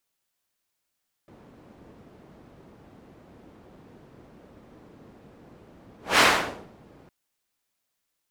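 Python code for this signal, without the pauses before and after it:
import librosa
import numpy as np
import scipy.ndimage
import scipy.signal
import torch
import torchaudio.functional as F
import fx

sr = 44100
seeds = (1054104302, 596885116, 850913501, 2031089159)

y = fx.whoosh(sr, seeds[0], length_s=5.81, peak_s=4.91, rise_s=0.2, fall_s=0.58, ends_hz=280.0, peak_hz=1800.0, q=0.72, swell_db=34.0)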